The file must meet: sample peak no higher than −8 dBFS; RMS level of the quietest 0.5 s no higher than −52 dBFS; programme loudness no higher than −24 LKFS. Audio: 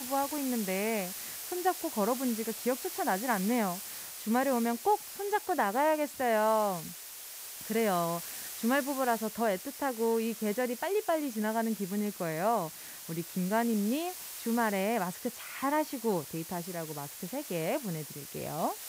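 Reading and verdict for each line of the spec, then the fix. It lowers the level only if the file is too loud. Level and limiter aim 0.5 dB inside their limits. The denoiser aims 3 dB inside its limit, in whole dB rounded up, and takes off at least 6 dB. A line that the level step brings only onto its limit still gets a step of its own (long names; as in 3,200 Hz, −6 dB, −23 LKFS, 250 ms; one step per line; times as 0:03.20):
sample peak −16.5 dBFS: in spec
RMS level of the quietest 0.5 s −45 dBFS: out of spec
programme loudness −32.0 LKFS: in spec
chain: broadband denoise 10 dB, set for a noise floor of −45 dBFS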